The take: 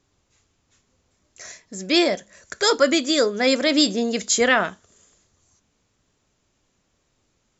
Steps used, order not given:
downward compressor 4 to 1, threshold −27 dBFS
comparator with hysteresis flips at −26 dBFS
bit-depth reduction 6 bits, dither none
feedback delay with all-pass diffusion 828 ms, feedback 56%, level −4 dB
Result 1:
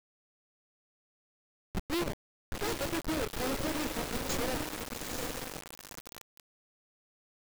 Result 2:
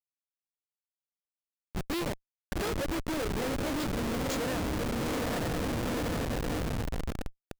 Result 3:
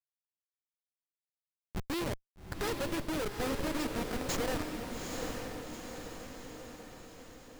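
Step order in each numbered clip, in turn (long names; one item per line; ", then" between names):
downward compressor, then comparator with hysteresis, then feedback delay with all-pass diffusion, then bit-depth reduction
bit-depth reduction, then feedback delay with all-pass diffusion, then downward compressor, then comparator with hysteresis
downward compressor, then bit-depth reduction, then comparator with hysteresis, then feedback delay with all-pass diffusion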